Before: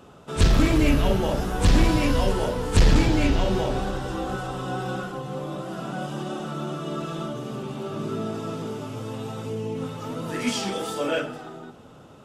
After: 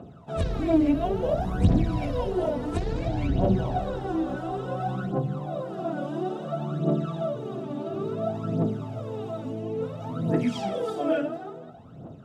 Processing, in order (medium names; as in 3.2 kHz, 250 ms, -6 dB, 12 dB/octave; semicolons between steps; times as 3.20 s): compression 6:1, threshold -21 dBFS, peak gain reduction 9 dB; high-pass 130 Hz 12 dB/octave; tilt EQ -3.5 dB/octave; small resonant body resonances 680/3800 Hz, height 13 dB, ringing for 55 ms; phaser 0.58 Hz, delay 3.6 ms, feedback 68%; trim -7 dB